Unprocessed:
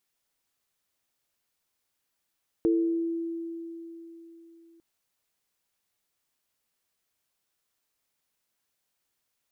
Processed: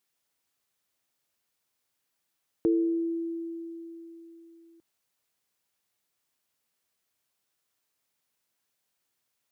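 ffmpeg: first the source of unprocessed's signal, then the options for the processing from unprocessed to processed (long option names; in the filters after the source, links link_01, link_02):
-f lavfi -i "aevalsrc='0.1*pow(10,-3*t/3.72)*sin(2*PI*333*t)+0.0562*pow(10,-3*t/0.75)*sin(2*PI*446*t)':duration=2.15:sample_rate=44100"
-af "highpass=70"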